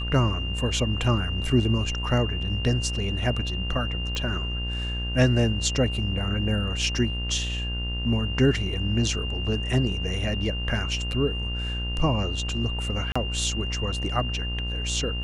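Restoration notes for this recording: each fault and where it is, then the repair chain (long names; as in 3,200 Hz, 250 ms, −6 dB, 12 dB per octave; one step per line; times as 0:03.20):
mains buzz 60 Hz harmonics 36 −30 dBFS
whistle 2,800 Hz −32 dBFS
0:04.15: click −17 dBFS
0:13.12–0:13.15: drop-out 35 ms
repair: click removal
notch filter 2,800 Hz, Q 30
hum removal 60 Hz, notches 36
repair the gap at 0:13.12, 35 ms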